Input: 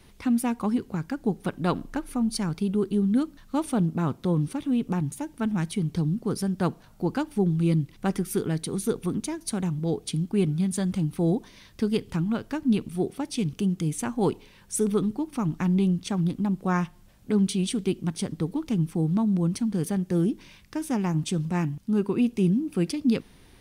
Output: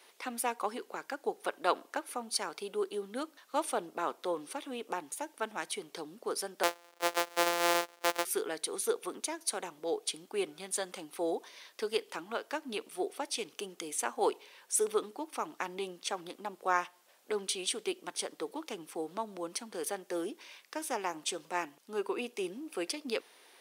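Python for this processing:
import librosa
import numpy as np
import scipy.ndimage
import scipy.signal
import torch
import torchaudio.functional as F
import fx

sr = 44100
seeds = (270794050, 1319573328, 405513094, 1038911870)

y = fx.sample_sort(x, sr, block=256, at=(6.63, 8.25))
y = scipy.signal.sosfilt(scipy.signal.butter(4, 450.0, 'highpass', fs=sr, output='sos'), y)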